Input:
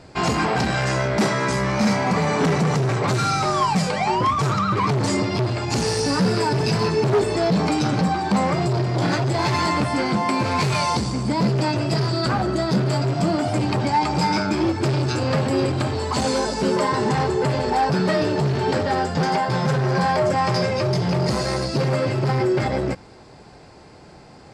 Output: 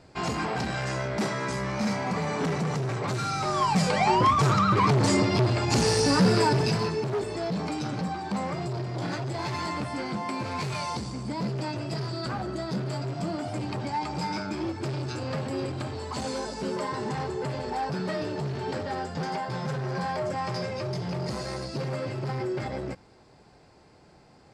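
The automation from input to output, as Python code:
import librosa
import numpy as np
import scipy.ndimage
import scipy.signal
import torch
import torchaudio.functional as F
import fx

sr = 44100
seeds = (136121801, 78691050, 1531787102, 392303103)

y = fx.gain(x, sr, db=fx.line((3.31, -8.5), (3.96, -1.0), (6.46, -1.0), (7.09, -10.5)))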